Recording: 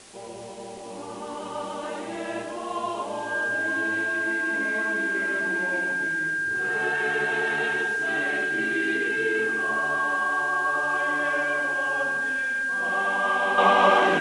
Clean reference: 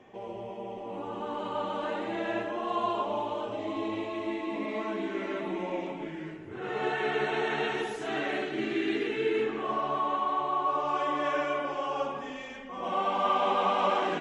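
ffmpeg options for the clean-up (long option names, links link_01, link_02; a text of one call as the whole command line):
ffmpeg -i in.wav -af "bandreject=frequency=1600:width=30,afwtdn=0.0045,asetnsamples=nb_out_samples=441:pad=0,asendcmd='13.58 volume volume -8dB',volume=0dB" out.wav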